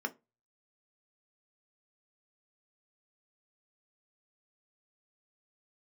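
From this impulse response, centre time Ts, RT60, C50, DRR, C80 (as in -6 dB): 4 ms, 0.25 s, 21.5 dB, 5.5 dB, 30.0 dB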